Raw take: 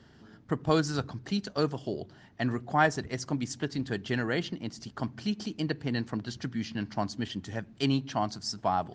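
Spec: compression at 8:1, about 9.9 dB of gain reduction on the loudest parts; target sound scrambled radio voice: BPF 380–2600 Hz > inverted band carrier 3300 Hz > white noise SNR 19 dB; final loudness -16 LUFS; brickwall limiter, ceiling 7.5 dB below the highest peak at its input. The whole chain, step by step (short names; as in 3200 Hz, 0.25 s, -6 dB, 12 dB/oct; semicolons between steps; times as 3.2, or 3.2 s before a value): compressor 8:1, threshold -29 dBFS; limiter -25 dBFS; BPF 380–2600 Hz; inverted band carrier 3300 Hz; white noise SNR 19 dB; gain +24.5 dB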